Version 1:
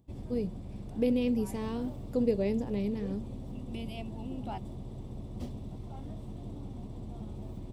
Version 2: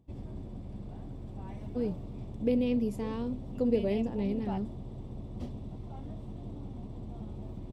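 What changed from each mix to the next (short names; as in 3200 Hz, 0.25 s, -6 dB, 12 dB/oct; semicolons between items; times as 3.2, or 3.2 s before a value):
first voice: entry +1.45 s; master: add LPF 3800 Hz 6 dB/oct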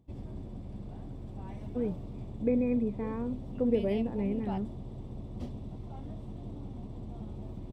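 first voice: add brick-wall FIR low-pass 2600 Hz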